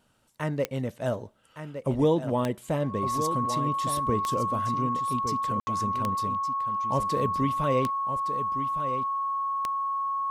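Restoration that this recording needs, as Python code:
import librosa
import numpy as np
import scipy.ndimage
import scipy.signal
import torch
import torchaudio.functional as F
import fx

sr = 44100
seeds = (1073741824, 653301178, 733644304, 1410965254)

y = fx.fix_declick_ar(x, sr, threshold=10.0)
y = fx.notch(y, sr, hz=1100.0, q=30.0)
y = fx.fix_ambience(y, sr, seeds[0], print_start_s=0.0, print_end_s=0.5, start_s=5.6, end_s=5.67)
y = fx.fix_echo_inverse(y, sr, delay_ms=1163, level_db=-9.5)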